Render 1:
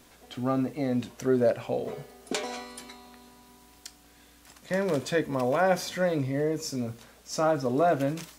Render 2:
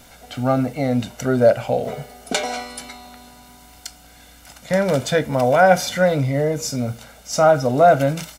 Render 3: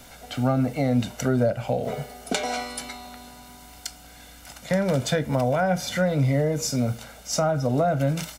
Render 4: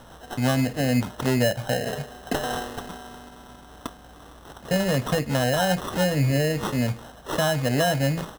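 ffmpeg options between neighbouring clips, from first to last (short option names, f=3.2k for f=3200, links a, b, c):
-af "aecho=1:1:1.4:0.58,volume=8.5dB"
-filter_complex "[0:a]acrossover=split=220[a][b];[b]acompressor=threshold=-23dB:ratio=4[c];[a][c]amix=inputs=2:normalize=0"
-af "acrusher=samples=19:mix=1:aa=0.000001"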